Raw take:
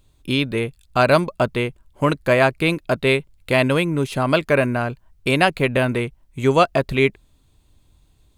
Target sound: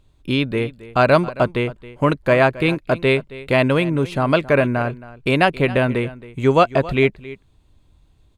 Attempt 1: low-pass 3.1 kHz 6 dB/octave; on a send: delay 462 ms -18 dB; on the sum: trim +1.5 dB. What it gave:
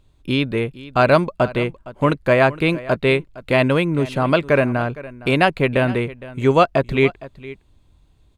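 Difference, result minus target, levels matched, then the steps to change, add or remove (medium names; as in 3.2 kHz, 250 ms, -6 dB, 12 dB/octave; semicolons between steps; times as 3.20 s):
echo 191 ms late
change: delay 271 ms -18 dB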